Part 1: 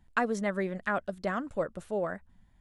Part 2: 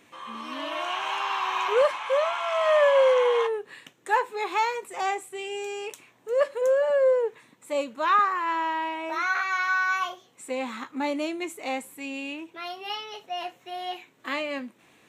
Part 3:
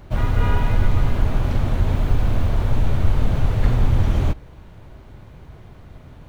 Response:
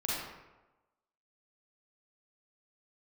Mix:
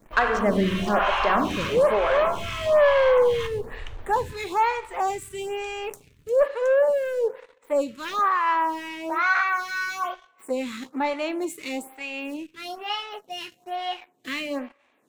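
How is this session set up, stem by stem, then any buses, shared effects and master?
+1.0 dB, 0.00 s, send -6.5 dB, none
-2.5 dB, 0.00 s, send -22 dB, none
-15.0 dB, 0.00 s, send -15.5 dB, treble shelf 5.6 kHz +8 dB; compression 2.5:1, threshold -29 dBFS, peak gain reduction 13 dB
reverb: on, RT60 1.1 s, pre-delay 36 ms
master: waveshaping leveller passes 2; lamp-driven phase shifter 1.1 Hz

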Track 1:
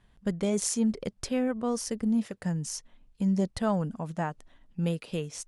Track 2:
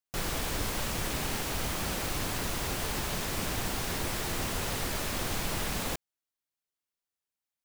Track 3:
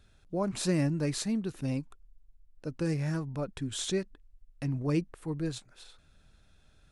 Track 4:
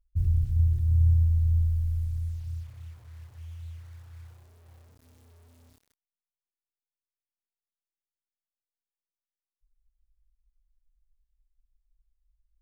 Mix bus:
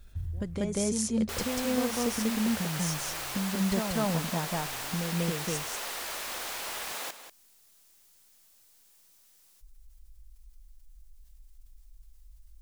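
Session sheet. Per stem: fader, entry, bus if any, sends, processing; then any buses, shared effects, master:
+2.5 dB, 0.15 s, bus A, no send, echo send -5 dB, none
-1.5 dB, 1.15 s, no bus, no send, echo send -11.5 dB, high-pass 600 Hz 12 dB/octave
-19.0 dB, 0.00 s, bus A, no send, no echo send, peak limiter -28 dBFS, peak gain reduction 11 dB; level flattener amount 70%
-8.5 dB, 0.00 s, bus A, no send, no echo send, tone controls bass +2 dB, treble +8 dB; level flattener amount 50%; auto duck -18 dB, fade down 1.30 s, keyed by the third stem
bus A: 0.0 dB, compression 6:1, threshold -31 dBFS, peak gain reduction 11 dB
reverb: none
echo: delay 190 ms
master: none

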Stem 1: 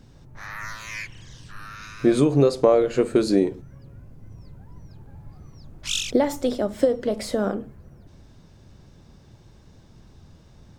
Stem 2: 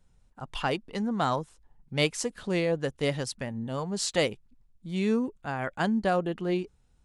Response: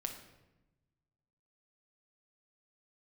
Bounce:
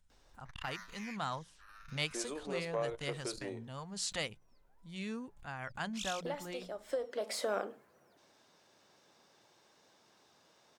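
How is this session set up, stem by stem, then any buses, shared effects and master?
-4.5 dB, 0.10 s, no send, high-pass 590 Hz 12 dB/octave; auto duck -10 dB, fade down 0.90 s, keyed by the second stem
-6.5 dB, 0.00 s, no send, peaking EQ 360 Hz -12 dB 2 oct; hum notches 60/120/180 Hz; swell ahead of each attack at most 120 dB/s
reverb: none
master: transformer saturation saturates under 690 Hz

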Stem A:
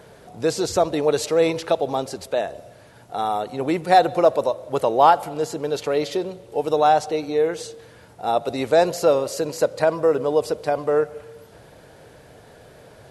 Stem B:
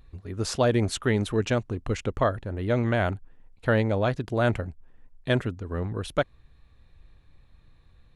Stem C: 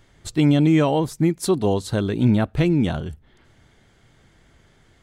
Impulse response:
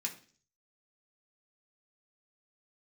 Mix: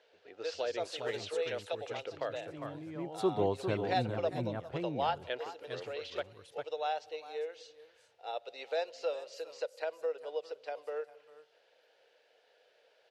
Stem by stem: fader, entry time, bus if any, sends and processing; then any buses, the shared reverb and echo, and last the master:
-9.0 dB, 0.00 s, bus A, no send, echo send -21.5 dB, tilt EQ +2 dB/octave; upward expansion 1.5:1, over -30 dBFS
-8.0 dB, 0.00 s, muted 2.53–4.69 s, bus A, no send, echo send -11 dB, none
2.79 s -15 dB -> 3.26 s -5.5 dB, 1.75 s, no bus, no send, echo send -7.5 dB, low-pass 1.2 kHz 6 dB/octave; auto duck -18 dB, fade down 1.00 s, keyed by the second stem
bus A: 0.0 dB, cabinet simulation 430–5100 Hz, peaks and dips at 490 Hz +8 dB, 1.1 kHz -8 dB, 2.8 kHz +6 dB; compression 1.5:1, threshold -38 dBFS, peak gain reduction 7 dB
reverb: none
echo: delay 403 ms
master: high-pass 110 Hz 24 dB/octave; peaking EQ 200 Hz -11.5 dB 1.3 oct

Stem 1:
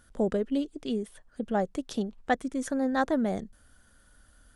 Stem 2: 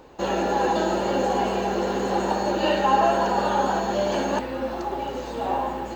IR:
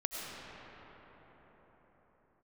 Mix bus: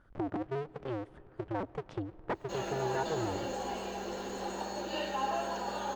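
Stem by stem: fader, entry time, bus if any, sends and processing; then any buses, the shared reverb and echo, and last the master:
-2.5 dB, 0.00 s, send -22 dB, cycle switcher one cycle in 2, inverted; low-pass 1.3 kHz 12 dB/octave; compression 2:1, threshold -35 dBFS, peak gain reduction 8 dB
-15.0 dB, 2.30 s, no send, none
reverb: on, pre-delay 60 ms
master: treble shelf 2.9 kHz +9.5 dB

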